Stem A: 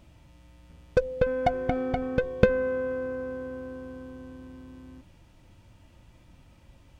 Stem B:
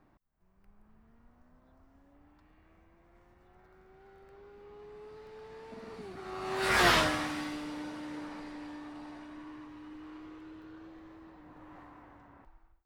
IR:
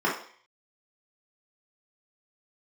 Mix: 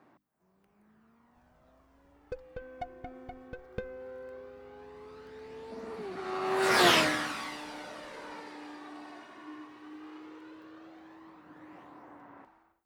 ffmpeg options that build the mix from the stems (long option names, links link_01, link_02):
-filter_complex "[0:a]adelay=1350,volume=-18dB[link_01];[1:a]highpass=200,bandreject=frequency=50:width_type=h:width=6,bandreject=frequency=100:width_type=h:width=6,bandreject=frequency=150:width_type=h:width=6,bandreject=frequency=200:width_type=h:width=6,bandreject=frequency=250:width_type=h:width=6,bandreject=frequency=300:width_type=h:width=6,volume=2dB[link_02];[link_01][link_02]amix=inputs=2:normalize=0,aphaser=in_gain=1:out_gain=1:delay=2.8:decay=0.38:speed=0.16:type=sinusoidal"